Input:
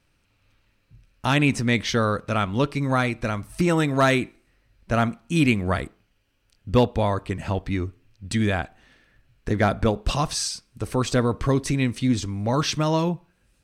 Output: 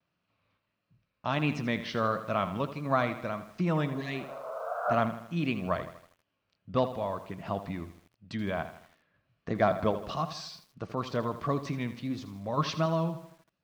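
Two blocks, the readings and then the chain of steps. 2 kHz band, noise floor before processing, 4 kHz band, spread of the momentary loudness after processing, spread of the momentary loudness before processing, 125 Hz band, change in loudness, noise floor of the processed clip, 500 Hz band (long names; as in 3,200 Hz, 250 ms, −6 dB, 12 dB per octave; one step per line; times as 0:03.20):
−10.0 dB, −67 dBFS, −11.5 dB, 11 LU, 9 LU, −10.0 dB, −8.5 dB, −81 dBFS, −6.5 dB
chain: healed spectral selection 0:03.94–0:04.92, 450–1,600 Hz both
sample-and-hold tremolo
loudspeaker in its box 110–5,100 Hz, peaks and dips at 170 Hz +8 dB, 640 Hz +9 dB, 1,100 Hz +9 dB
pitch vibrato 1.5 Hz 76 cents
feedback echo at a low word length 80 ms, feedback 55%, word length 7 bits, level −12 dB
level −9 dB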